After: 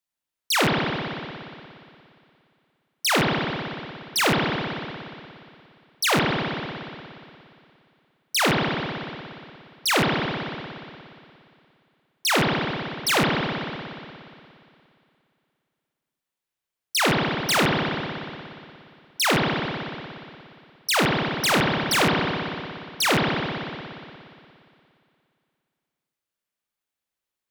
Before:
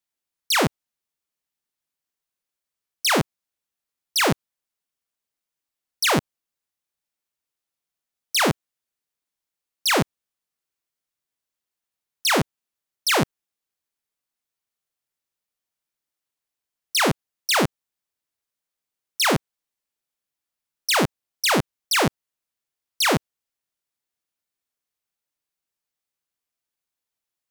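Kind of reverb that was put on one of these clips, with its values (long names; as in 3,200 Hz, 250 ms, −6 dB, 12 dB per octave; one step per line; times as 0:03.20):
spring reverb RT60 2.5 s, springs 58 ms, chirp 35 ms, DRR −2 dB
level −2 dB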